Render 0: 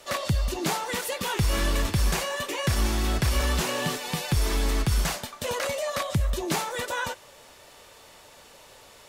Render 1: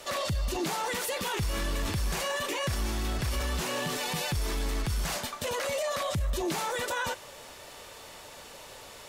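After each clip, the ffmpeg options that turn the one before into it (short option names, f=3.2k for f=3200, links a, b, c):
-af "acontrast=32,alimiter=limit=-22dB:level=0:latency=1:release=17,volume=-1.5dB"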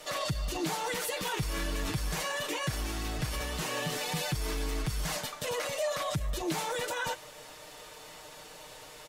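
-af "aecho=1:1:6.5:0.65,volume=-3dB"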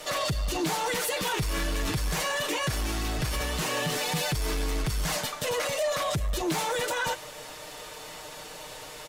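-af "asoftclip=type=tanh:threshold=-28.5dB,volume=6.5dB"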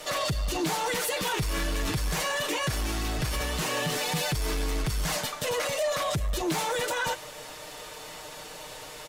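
-af anull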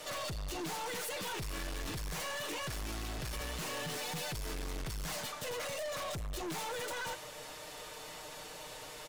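-af "aeval=exprs='(tanh(44.7*val(0)+0.2)-tanh(0.2))/44.7':c=same,volume=-4dB"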